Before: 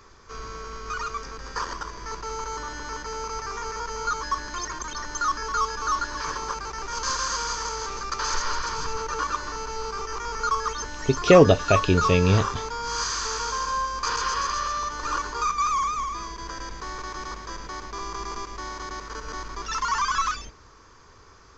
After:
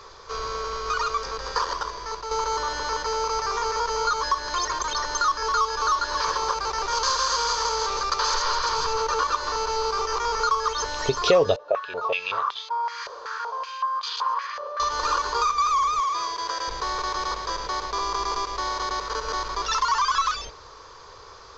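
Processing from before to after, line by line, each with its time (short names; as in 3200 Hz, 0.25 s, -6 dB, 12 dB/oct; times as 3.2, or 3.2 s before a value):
1.55–2.31 fade out, to -8 dB
11.56–14.8 stepped band-pass 5.3 Hz 550–3400 Hz
16–16.68 HPF 420 Hz 6 dB/oct
whole clip: graphic EQ 250/500/1000/4000 Hz -8/+11/+7/+12 dB; compressor 2.5:1, threshold -22 dBFS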